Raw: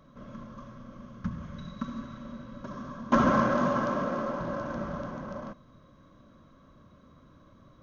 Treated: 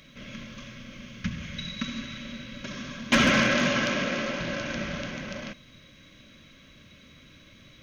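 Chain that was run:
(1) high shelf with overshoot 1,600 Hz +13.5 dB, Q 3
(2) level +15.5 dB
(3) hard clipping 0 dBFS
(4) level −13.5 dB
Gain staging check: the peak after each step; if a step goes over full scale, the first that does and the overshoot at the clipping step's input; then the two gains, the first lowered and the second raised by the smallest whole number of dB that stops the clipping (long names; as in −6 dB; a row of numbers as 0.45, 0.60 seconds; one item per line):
−6.5, +9.0, 0.0, −13.5 dBFS
step 2, 9.0 dB
step 2 +6.5 dB, step 4 −4.5 dB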